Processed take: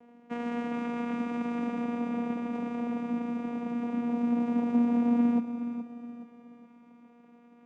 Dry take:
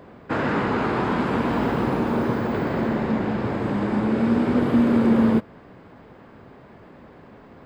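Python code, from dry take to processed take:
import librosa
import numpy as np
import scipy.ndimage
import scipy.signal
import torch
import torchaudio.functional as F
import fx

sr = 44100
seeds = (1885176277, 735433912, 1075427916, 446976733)

y = fx.vocoder(x, sr, bands=4, carrier='saw', carrier_hz=238.0)
y = fx.echo_feedback(y, sr, ms=421, feedback_pct=42, wet_db=-10.0)
y = y * librosa.db_to_amplitude(-7.5)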